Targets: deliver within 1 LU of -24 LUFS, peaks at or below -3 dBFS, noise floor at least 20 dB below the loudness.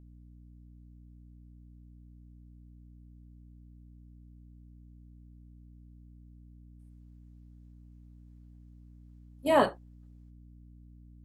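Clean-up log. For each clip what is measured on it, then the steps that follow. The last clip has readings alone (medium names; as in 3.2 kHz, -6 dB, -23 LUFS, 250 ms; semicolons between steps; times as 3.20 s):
hum 60 Hz; highest harmonic 300 Hz; hum level -50 dBFS; loudness -27.5 LUFS; peak level -11.5 dBFS; loudness target -24.0 LUFS
-> hum notches 60/120/180/240/300 Hz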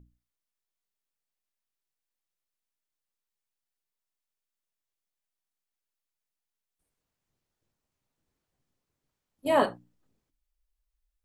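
hum not found; loudness -27.5 LUFS; peak level -11.5 dBFS; loudness target -24.0 LUFS
-> trim +3.5 dB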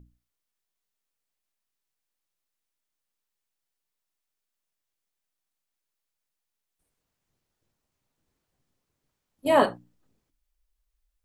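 loudness -24.0 LUFS; peak level -8.0 dBFS; noise floor -85 dBFS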